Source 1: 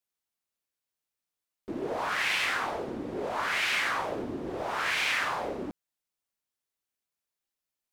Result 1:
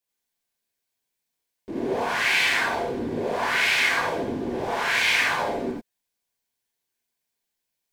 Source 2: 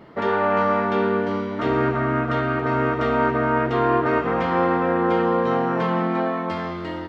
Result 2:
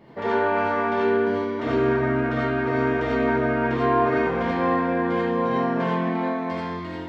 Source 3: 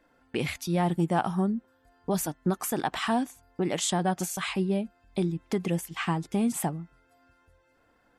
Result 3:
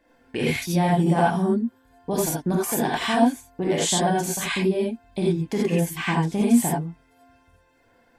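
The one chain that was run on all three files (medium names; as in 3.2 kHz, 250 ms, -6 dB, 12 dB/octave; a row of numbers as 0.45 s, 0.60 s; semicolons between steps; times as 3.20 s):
band-stop 1.3 kHz, Q 5.1; gated-style reverb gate 110 ms rising, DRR -4.5 dB; normalise loudness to -23 LUFS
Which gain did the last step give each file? +1.5 dB, -6.5 dB, +0.5 dB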